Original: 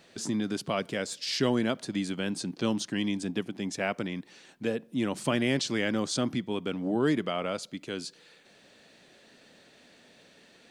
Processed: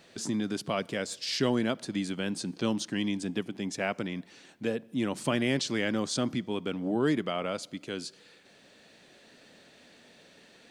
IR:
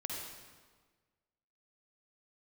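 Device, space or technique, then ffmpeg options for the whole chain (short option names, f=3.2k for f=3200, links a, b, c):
ducked reverb: -filter_complex "[0:a]asplit=3[a][b][c];[1:a]atrim=start_sample=2205[d];[b][d]afir=irnorm=-1:irlink=0[e];[c]apad=whole_len=471880[f];[e][f]sidechaincompress=threshold=-45dB:ratio=4:attack=34:release=1120,volume=-10.5dB[g];[a][g]amix=inputs=2:normalize=0,volume=-1dB"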